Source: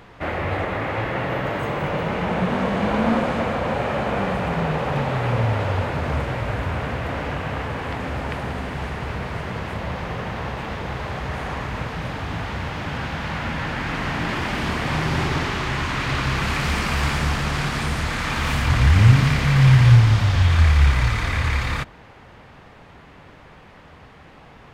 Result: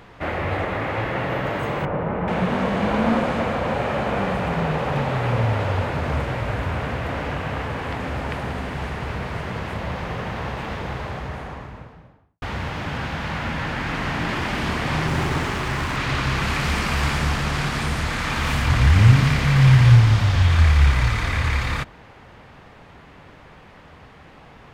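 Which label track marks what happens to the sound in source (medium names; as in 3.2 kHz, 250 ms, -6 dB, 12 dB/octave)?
1.850000	2.280000	low-pass 1.4 kHz
10.730000	12.420000	studio fade out
15.070000	15.970000	sliding maximum over 5 samples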